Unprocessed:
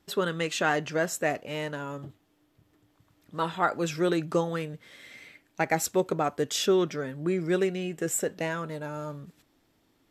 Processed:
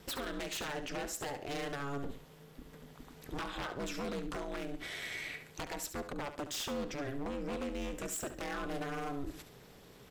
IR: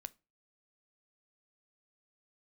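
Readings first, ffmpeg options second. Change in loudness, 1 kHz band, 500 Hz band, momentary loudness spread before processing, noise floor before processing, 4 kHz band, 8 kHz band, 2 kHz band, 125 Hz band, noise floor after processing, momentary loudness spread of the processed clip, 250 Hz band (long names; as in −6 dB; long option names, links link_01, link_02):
−11.0 dB, −10.5 dB, −12.5 dB, 16 LU, −69 dBFS, −6.5 dB, −8.5 dB, −9.0 dB, −11.5 dB, −57 dBFS, 15 LU, −10.0 dB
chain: -filter_complex "[0:a]acompressor=threshold=-39dB:ratio=16,aeval=exprs='0.0106*(abs(mod(val(0)/0.0106+3,4)-2)-1)':channel_layout=same,alimiter=level_in=21dB:limit=-24dB:level=0:latency=1:release=57,volume=-21dB,aeval=exprs='val(0)*sin(2*PI*140*n/s)':channel_layout=same,asplit=2[link_01][link_02];[link_02]aecho=0:1:70|140|210:0.282|0.0789|0.0221[link_03];[link_01][link_03]amix=inputs=2:normalize=0,volume=14.5dB"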